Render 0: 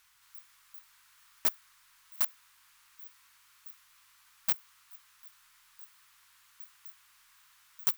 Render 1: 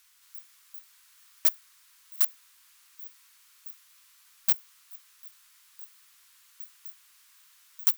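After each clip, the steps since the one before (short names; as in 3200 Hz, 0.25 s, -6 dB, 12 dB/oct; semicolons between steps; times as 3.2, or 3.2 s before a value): high shelf 2200 Hz +11 dB; gain -5.5 dB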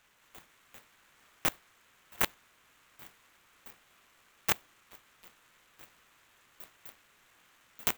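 median filter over 9 samples; gain +3.5 dB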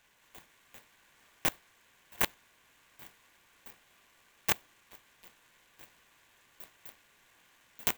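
Butterworth band-stop 1300 Hz, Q 7.8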